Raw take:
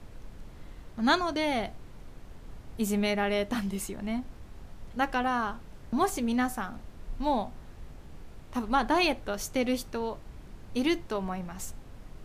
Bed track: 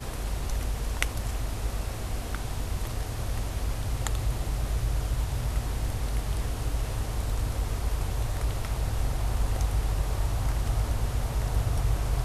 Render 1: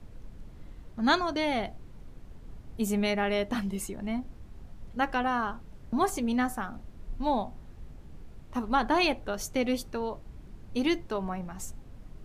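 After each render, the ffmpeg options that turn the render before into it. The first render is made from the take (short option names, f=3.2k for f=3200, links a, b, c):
-af "afftdn=nr=6:nf=-48"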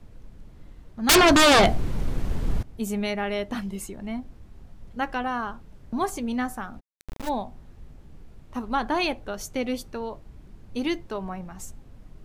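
-filter_complex "[0:a]asettb=1/sr,asplit=3[a][b][c];[a]atrim=end=1.094[d];[b]atrim=start=1.09:end=2.63,asetpts=PTS-STARTPTS,afade=t=in:d=0.004:c=qsin,afade=t=out:st=1.536:d=0.004:c=qsin,aeval=exprs='0.251*sin(PI/2*7.08*val(0)/0.251)':c=same[e];[c]atrim=start=2.626[f];[d][e]acrossfade=d=0.004:c1=hsin:c2=qsin[g];[g][f]acrossfade=d=0.004:c1=qsin:c2=hsin,asplit=3[h][i][j];[h]afade=t=out:st=6.79:d=0.02[k];[i]acrusher=bits=3:dc=4:mix=0:aa=0.000001,afade=t=in:st=6.79:d=0.02,afade=t=out:st=7.28:d=0.02[l];[j]afade=t=in:st=7.28:d=0.02[m];[k][l][m]amix=inputs=3:normalize=0"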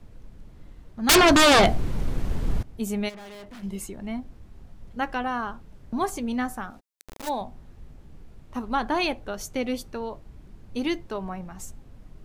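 -filter_complex "[0:a]asplit=3[a][b][c];[a]afade=t=out:st=3.08:d=0.02[d];[b]aeval=exprs='(tanh(112*val(0)+0.35)-tanh(0.35))/112':c=same,afade=t=in:st=3.08:d=0.02,afade=t=out:st=3.62:d=0.02[e];[c]afade=t=in:st=3.62:d=0.02[f];[d][e][f]amix=inputs=3:normalize=0,asettb=1/sr,asplit=3[g][h][i];[g]atrim=end=6.704[j];[h]atrim=start=6.7:end=7.41,asetpts=PTS-STARTPTS,afade=t=in:d=0.004:c=qsin,afade=t=out:st=0.706:d=0.004:c=qsin,bass=f=250:g=-10,treble=f=4k:g=5[k];[i]atrim=start=7.406[l];[j][k]acrossfade=d=0.004:c1=hsin:c2=qsin[m];[m][l]acrossfade=d=0.004:c1=qsin:c2=hsin"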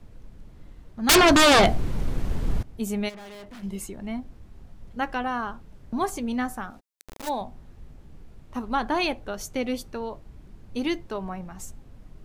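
-af anull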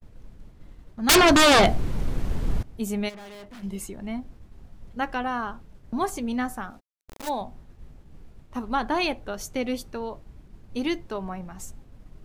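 -af "agate=range=-33dB:threshold=-42dB:ratio=3:detection=peak"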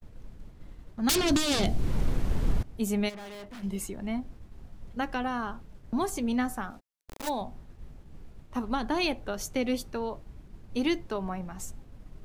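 -filter_complex "[0:a]acrossover=split=420|3000[a][b][c];[b]acompressor=threshold=-30dB:ratio=6[d];[a][d][c]amix=inputs=3:normalize=0,alimiter=limit=-15dB:level=0:latency=1:release=348"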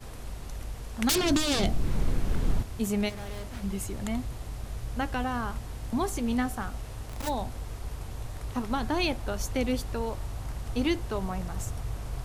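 -filter_complex "[1:a]volume=-8.5dB[a];[0:a][a]amix=inputs=2:normalize=0"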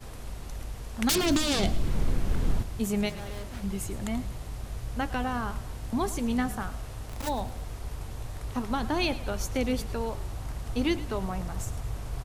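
-filter_complex "[0:a]asplit=5[a][b][c][d][e];[b]adelay=109,afreqshift=-44,volume=-16.5dB[f];[c]adelay=218,afreqshift=-88,volume=-22.7dB[g];[d]adelay=327,afreqshift=-132,volume=-28.9dB[h];[e]adelay=436,afreqshift=-176,volume=-35.1dB[i];[a][f][g][h][i]amix=inputs=5:normalize=0"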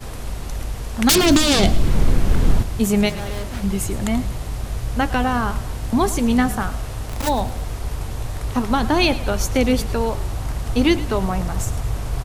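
-af "volume=10.5dB,alimiter=limit=-3dB:level=0:latency=1"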